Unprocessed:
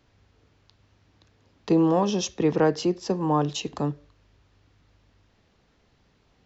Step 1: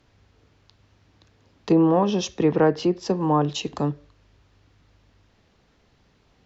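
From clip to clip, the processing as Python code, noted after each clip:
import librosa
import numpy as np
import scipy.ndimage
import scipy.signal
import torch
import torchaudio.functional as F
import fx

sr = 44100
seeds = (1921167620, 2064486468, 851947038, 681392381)

y = fx.env_lowpass_down(x, sr, base_hz=2500.0, full_db=-17.5)
y = y * librosa.db_to_amplitude(2.5)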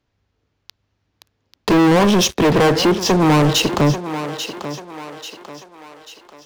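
y = fx.leveller(x, sr, passes=5)
y = fx.echo_thinned(y, sr, ms=840, feedback_pct=47, hz=320.0, wet_db=-10.5)
y = 10.0 ** (-6.5 / 20.0) * np.tanh(y / 10.0 ** (-6.5 / 20.0))
y = y * librosa.db_to_amplitude(-1.0)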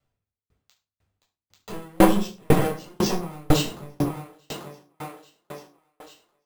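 y = fx.room_shoebox(x, sr, seeds[0], volume_m3=910.0, walls='furnished', distance_m=6.8)
y = np.repeat(y[::4], 4)[:len(y)]
y = fx.tremolo_decay(y, sr, direction='decaying', hz=2.0, depth_db=39)
y = y * librosa.db_to_amplitude(-9.0)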